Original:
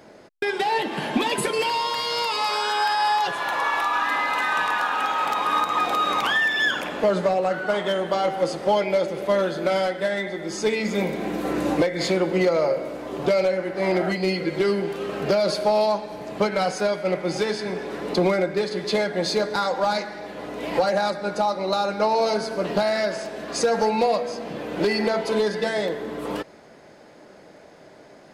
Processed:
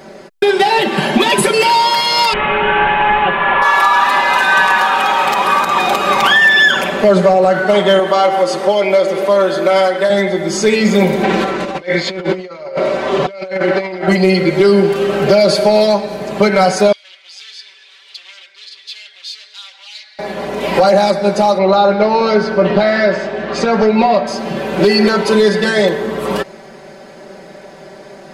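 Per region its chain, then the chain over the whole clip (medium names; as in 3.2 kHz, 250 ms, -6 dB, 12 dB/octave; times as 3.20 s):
2.33–3.62 s: one-bit delta coder 16 kbps, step -24 dBFS + distance through air 85 m
7.99–10.10 s: peaking EQ 1.1 kHz +5.5 dB 0.25 oct + compression 2:1, threshold -25 dBFS + high-pass 260 Hz
11.23–14.08 s: low-pass 4.1 kHz + tilt EQ +2 dB/octave + compressor with a negative ratio -30 dBFS, ratio -0.5
16.92–20.19 s: overload inside the chain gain 26 dB + ladder band-pass 3.8 kHz, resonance 45%
21.58–24.27 s: low-pass 3.2 kHz + doubling 17 ms -14 dB
whole clip: comb 5.2 ms, depth 98%; loudness maximiser +10.5 dB; trim -1 dB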